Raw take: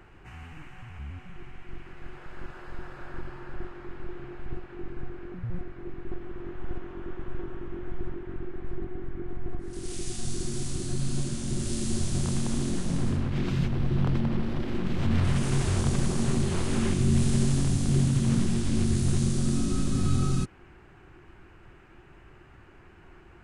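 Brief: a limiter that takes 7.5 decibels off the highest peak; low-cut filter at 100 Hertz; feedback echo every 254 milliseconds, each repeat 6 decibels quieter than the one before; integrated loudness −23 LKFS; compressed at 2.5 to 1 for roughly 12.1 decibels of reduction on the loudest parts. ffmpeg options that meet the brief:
ffmpeg -i in.wav -af "highpass=100,acompressor=threshold=-40dB:ratio=2.5,alimiter=level_in=9.5dB:limit=-24dB:level=0:latency=1,volume=-9.5dB,aecho=1:1:254|508|762|1016|1270|1524:0.501|0.251|0.125|0.0626|0.0313|0.0157,volume=19.5dB" out.wav

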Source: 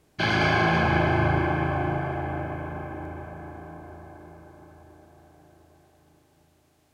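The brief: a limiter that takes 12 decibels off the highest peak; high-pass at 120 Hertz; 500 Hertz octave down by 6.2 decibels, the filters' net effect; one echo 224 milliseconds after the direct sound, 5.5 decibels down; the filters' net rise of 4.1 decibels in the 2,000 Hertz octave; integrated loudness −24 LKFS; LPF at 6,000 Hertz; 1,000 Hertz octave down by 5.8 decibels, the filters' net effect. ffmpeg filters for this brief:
ffmpeg -i in.wav -af "highpass=120,lowpass=6000,equalizer=frequency=500:width_type=o:gain=-8,equalizer=frequency=1000:width_type=o:gain=-6.5,equalizer=frequency=2000:width_type=o:gain=8.5,alimiter=limit=-22dB:level=0:latency=1,aecho=1:1:224:0.531,volume=7dB" out.wav

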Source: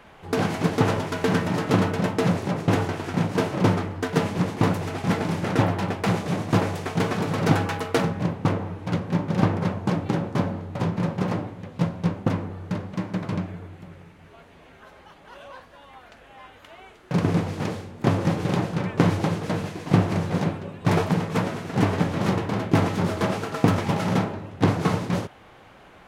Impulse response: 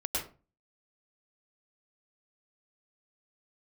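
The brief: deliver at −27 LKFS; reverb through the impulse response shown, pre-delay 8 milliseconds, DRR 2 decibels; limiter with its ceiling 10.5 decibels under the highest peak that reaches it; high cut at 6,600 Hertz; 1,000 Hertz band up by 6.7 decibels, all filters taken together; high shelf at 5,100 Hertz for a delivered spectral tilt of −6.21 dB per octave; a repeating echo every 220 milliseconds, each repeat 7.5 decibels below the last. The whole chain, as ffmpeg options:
-filter_complex "[0:a]lowpass=6600,equalizer=frequency=1000:width_type=o:gain=8.5,highshelf=frequency=5100:gain=-4.5,alimiter=limit=-11.5dB:level=0:latency=1,aecho=1:1:220|440|660|880|1100:0.422|0.177|0.0744|0.0312|0.0131,asplit=2[link_01][link_02];[1:a]atrim=start_sample=2205,adelay=8[link_03];[link_02][link_03]afir=irnorm=-1:irlink=0,volume=-7.5dB[link_04];[link_01][link_04]amix=inputs=2:normalize=0,volume=-5dB"

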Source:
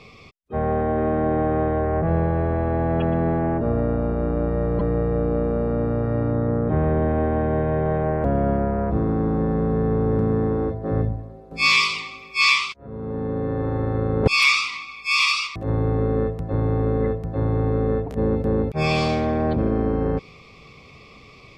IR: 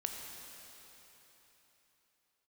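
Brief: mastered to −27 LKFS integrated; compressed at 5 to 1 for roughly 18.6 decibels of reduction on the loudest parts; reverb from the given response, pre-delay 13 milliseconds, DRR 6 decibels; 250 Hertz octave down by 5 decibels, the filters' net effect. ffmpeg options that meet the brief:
-filter_complex "[0:a]equalizer=frequency=250:width_type=o:gain=-7,acompressor=threshold=-35dB:ratio=5,asplit=2[link_01][link_02];[1:a]atrim=start_sample=2205,adelay=13[link_03];[link_02][link_03]afir=irnorm=-1:irlink=0,volume=-7dB[link_04];[link_01][link_04]amix=inputs=2:normalize=0,volume=8.5dB"

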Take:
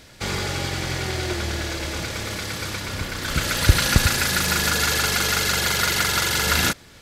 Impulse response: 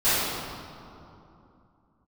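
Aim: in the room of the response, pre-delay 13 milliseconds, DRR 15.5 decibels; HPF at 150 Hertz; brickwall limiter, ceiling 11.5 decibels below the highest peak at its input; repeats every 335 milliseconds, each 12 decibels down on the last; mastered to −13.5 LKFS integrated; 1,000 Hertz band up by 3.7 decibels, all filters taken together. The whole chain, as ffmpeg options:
-filter_complex "[0:a]highpass=150,equalizer=frequency=1000:width_type=o:gain=5.5,alimiter=limit=-16.5dB:level=0:latency=1,aecho=1:1:335|670|1005:0.251|0.0628|0.0157,asplit=2[link_01][link_02];[1:a]atrim=start_sample=2205,adelay=13[link_03];[link_02][link_03]afir=irnorm=-1:irlink=0,volume=-33.5dB[link_04];[link_01][link_04]amix=inputs=2:normalize=0,volume=11.5dB"

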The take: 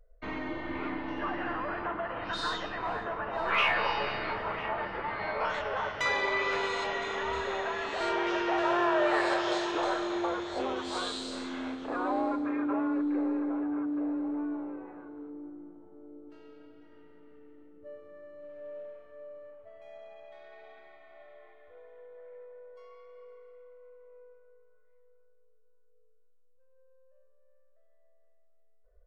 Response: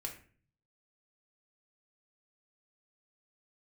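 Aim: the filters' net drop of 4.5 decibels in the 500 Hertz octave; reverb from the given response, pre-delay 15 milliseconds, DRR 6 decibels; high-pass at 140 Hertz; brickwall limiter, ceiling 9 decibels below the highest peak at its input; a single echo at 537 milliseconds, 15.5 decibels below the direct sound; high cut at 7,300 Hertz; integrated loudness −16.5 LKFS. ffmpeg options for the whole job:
-filter_complex "[0:a]highpass=140,lowpass=7300,equalizer=frequency=500:width_type=o:gain=-6.5,alimiter=limit=-24dB:level=0:latency=1,aecho=1:1:537:0.168,asplit=2[link_01][link_02];[1:a]atrim=start_sample=2205,adelay=15[link_03];[link_02][link_03]afir=irnorm=-1:irlink=0,volume=-4.5dB[link_04];[link_01][link_04]amix=inputs=2:normalize=0,volume=16.5dB"

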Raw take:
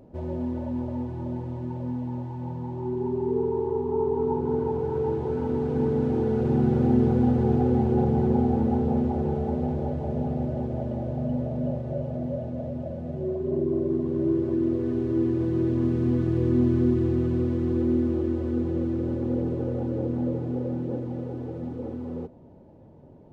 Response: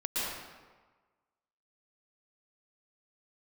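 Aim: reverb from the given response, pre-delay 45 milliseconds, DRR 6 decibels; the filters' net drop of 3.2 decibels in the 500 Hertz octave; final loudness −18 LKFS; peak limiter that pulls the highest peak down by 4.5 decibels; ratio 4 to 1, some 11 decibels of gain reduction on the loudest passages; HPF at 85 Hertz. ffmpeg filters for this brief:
-filter_complex "[0:a]highpass=85,equalizer=frequency=500:width_type=o:gain=-4.5,acompressor=threshold=-32dB:ratio=4,alimiter=level_in=3.5dB:limit=-24dB:level=0:latency=1,volume=-3.5dB,asplit=2[link_01][link_02];[1:a]atrim=start_sample=2205,adelay=45[link_03];[link_02][link_03]afir=irnorm=-1:irlink=0,volume=-13.5dB[link_04];[link_01][link_04]amix=inputs=2:normalize=0,volume=18.5dB"

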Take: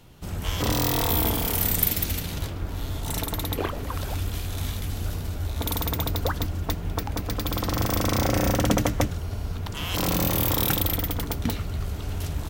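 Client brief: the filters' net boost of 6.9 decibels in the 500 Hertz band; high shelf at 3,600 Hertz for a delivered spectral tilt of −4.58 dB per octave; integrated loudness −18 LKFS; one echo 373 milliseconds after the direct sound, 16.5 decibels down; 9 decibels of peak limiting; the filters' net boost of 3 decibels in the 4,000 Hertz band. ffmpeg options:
ffmpeg -i in.wav -af "equalizer=frequency=500:width_type=o:gain=8,highshelf=frequency=3600:gain=-5.5,equalizer=frequency=4000:width_type=o:gain=7,alimiter=limit=-13dB:level=0:latency=1,aecho=1:1:373:0.15,volume=8.5dB" out.wav

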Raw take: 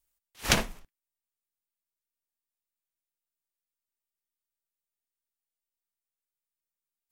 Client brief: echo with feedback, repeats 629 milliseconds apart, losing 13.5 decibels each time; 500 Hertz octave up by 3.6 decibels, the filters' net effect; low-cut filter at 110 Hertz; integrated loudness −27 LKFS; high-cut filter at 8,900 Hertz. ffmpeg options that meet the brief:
ffmpeg -i in.wav -af "highpass=110,lowpass=8900,equalizer=frequency=500:width_type=o:gain=4.5,aecho=1:1:629|1258:0.211|0.0444,volume=3.5dB" out.wav

